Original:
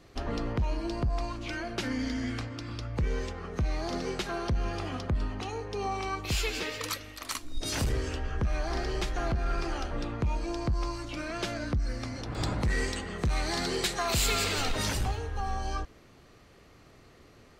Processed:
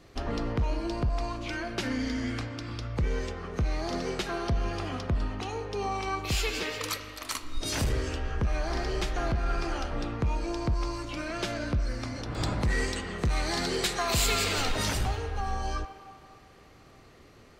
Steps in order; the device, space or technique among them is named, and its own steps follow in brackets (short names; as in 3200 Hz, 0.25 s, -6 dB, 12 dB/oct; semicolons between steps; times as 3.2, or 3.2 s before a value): filtered reverb send (on a send: HPF 470 Hz + LPF 4200 Hz + reverb RT60 2.8 s, pre-delay 18 ms, DRR 9 dB); on the sum: gain +1 dB